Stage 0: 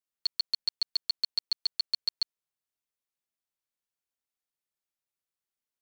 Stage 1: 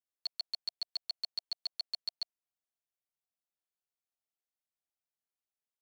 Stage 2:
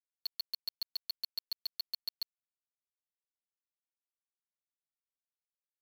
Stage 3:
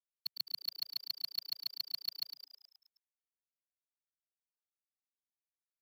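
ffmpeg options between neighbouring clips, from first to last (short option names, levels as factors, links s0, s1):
-af "equalizer=f=700:t=o:w=0.4:g=7.5,volume=0.398"
-af "acontrast=55,volume=18.8,asoftclip=hard,volume=0.0531,acrusher=bits=6:mix=0:aa=0.000001,volume=0.596"
-filter_complex "[0:a]agate=range=0.0224:threshold=0.0355:ratio=3:detection=peak,equalizer=f=150:t=o:w=1:g=5.5,asplit=2[s0][s1];[s1]asplit=7[s2][s3][s4][s5][s6][s7][s8];[s2]adelay=106,afreqshift=130,volume=0.316[s9];[s3]adelay=212,afreqshift=260,volume=0.186[s10];[s4]adelay=318,afreqshift=390,volume=0.11[s11];[s5]adelay=424,afreqshift=520,volume=0.0653[s12];[s6]adelay=530,afreqshift=650,volume=0.0385[s13];[s7]adelay=636,afreqshift=780,volume=0.0226[s14];[s8]adelay=742,afreqshift=910,volume=0.0133[s15];[s9][s10][s11][s12][s13][s14][s15]amix=inputs=7:normalize=0[s16];[s0][s16]amix=inputs=2:normalize=0,volume=3.55"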